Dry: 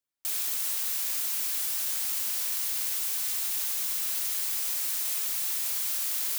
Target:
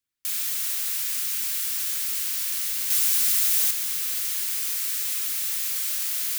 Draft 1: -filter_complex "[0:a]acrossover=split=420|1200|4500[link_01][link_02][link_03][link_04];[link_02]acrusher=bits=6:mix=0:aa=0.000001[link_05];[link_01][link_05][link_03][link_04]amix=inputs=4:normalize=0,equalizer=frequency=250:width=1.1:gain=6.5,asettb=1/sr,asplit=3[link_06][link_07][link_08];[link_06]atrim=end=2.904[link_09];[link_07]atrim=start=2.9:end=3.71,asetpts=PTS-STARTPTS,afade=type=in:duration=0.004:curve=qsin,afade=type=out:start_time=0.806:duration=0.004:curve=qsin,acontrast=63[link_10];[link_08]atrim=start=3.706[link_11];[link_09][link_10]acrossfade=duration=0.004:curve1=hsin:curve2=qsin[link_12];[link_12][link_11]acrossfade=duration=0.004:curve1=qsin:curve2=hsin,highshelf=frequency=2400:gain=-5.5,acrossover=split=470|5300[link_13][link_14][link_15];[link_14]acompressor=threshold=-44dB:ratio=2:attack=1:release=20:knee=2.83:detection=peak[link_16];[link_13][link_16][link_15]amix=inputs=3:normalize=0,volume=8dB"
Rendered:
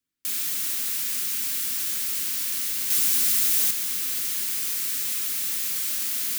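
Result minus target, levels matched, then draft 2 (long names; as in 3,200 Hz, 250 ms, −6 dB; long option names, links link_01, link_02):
250 Hz band +9.0 dB
-filter_complex "[0:a]acrossover=split=420|1200|4500[link_01][link_02][link_03][link_04];[link_02]acrusher=bits=6:mix=0:aa=0.000001[link_05];[link_01][link_05][link_03][link_04]amix=inputs=4:normalize=0,equalizer=frequency=250:width=1.1:gain=-4.5,asettb=1/sr,asplit=3[link_06][link_07][link_08];[link_06]atrim=end=2.904[link_09];[link_07]atrim=start=2.9:end=3.71,asetpts=PTS-STARTPTS,afade=type=in:duration=0.004:curve=qsin,afade=type=out:start_time=0.806:duration=0.004:curve=qsin,acontrast=63[link_10];[link_08]atrim=start=3.706[link_11];[link_09][link_10]acrossfade=duration=0.004:curve1=hsin:curve2=qsin[link_12];[link_12][link_11]acrossfade=duration=0.004:curve1=qsin:curve2=hsin,highshelf=frequency=2400:gain=-5.5,acrossover=split=470|5300[link_13][link_14][link_15];[link_14]acompressor=threshold=-44dB:ratio=2:attack=1:release=20:knee=2.83:detection=peak[link_16];[link_13][link_16][link_15]amix=inputs=3:normalize=0,volume=8dB"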